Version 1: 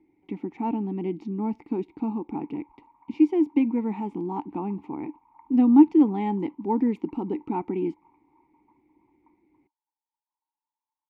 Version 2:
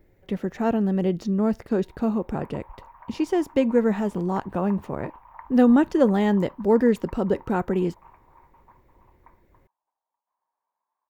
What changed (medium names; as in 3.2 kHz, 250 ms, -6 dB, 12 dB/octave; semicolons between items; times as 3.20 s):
speech -8.5 dB; master: remove vowel filter u